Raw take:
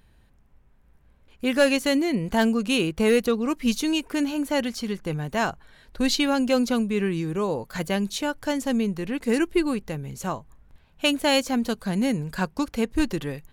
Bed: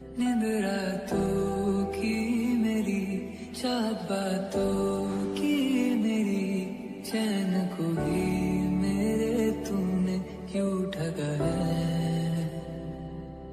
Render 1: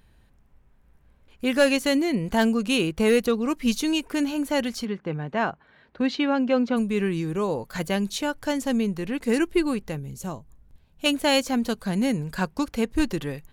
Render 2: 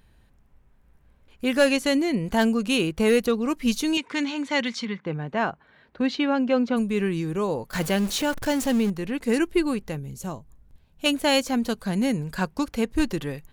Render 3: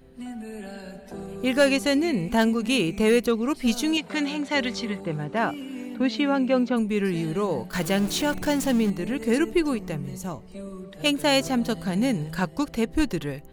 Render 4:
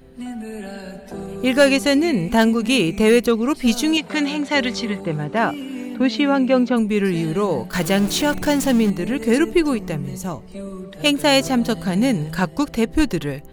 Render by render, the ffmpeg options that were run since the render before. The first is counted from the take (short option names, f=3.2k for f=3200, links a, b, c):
-filter_complex "[0:a]asplit=3[a][b][c];[a]afade=t=out:st=4.84:d=0.02[d];[b]highpass=130,lowpass=2.5k,afade=t=in:st=4.84:d=0.02,afade=t=out:st=6.76:d=0.02[e];[c]afade=t=in:st=6.76:d=0.02[f];[d][e][f]amix=inputs=3:normalize=0,asettb=1/sr,asplit=3[g][h][i];[g]atrim=end=9.994[j];[h]atrim=start=9.99:end=11.06,asetpts=PTS-STARTPTS,afade=t=in:d=0.004:c=qsin,afade=t=out:st=1.066:d=0.004:c=qsin,equalizer=f=1.5k:t=o:w=2.9:g=-9.5[k];[i]atrim=start=11.056[l];[j][k]acrossfade=d=0.004:c1=hsin:c2=qsin[m];[m][l]acrossfade=d=0.004:c1=qsin:c2=hsin"
-filter_complex "[0:a]asettb=1/sr,asplit=3[a][b][c];[a]atrim=end=1.674[d];[b]atrim=start=1.67:end=2.24,asetpts=PTS-STARTPTS,afade=t=in:d=0.004:c=qsin,afade=t=out:st=0.566:d=0.004:c=qsin,lowpass=12k[e];[c]atrim=start=2.236[f];[d][e]acrossfade=d=0.004:c1=hsin:c2=qsin[g];[g][f]acrossfade=d=0.004:c1=qsin:c2=hsin,asettb=1/sr,asplit=3[h][i][j];[h]atrim=end=3.974[k];[i]atrim=start=3.97:end=5.06,asetpts=PTS-STARTPTS,afade=t=in:d=0.004:c=qsin,afade=t=out:st=1.086:d=0.004:c=qsin,highpass=f=120:w=0.5412,highpass=f=120:w=1.3066,equalizer=f=360:t=q:w=4:g=-9,equalizer=f=680:t=q:w=4:g=-8,equalizer=f=1k:t=q:w=4:g=5,equalizer=f=2.1k:t=q:w=4:g=9,equalizer=f=3.6k:t=q:w=4:g=8,lowpass=f=7.3k:w=0.5412,lowpass=f=7.3k:w=1.3066[l];[j]atrim=start=5.056[m];[k][l]acrossfade=d=0.004:c1=hsin:c2=qsin[n];[n][m]acrossfade=d=0.004:c1=qsin:c2=hsin,asettb=1/sr,asplit=3[o][p][q];[o]atrim=end=7.734[r];[p]atrim=start=7.73:end=8.9,asetpts=PTS-STARTPTS,afade=t=in:d=0.004:c=qsin,afade=t=out:st=1.166:d=0.004:c=qsin,aeval=exprs='val(0)+0.5*0.0355*sgn(val(0))':c=same[s];[q]atrim=start=8.896[t];[r][s]acrossfade=d=0.004:c1=hsin:c2=qsin[u];[u][t]acrossfade=d=0.004:c1=qsin:c2=hsin"
-filter_complex "[1:a]volume=-9.5dB[a];[0:a][a]amix=inputs=2:normalize=0"
-af "volume=5.5dB"